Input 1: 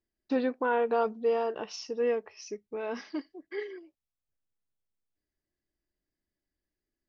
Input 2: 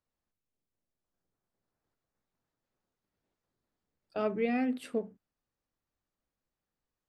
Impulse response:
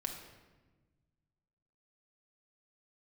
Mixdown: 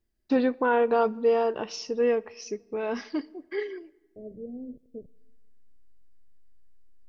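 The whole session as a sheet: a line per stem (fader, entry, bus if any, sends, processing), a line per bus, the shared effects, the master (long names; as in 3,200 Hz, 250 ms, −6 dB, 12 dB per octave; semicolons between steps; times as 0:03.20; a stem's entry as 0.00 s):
+3.0 dB, 0.00 s, send −17 dB, low-shelf EQ 120 Hz +10.5 dB
−9.0 dB, 0.00 s, send −20 dB, hold until the input has moved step −35.5 dBFS; Butterworth low-pass 570 Hz 48 dB per octave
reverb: on, RT60 1.3 s, pre-delay 5 ms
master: no processing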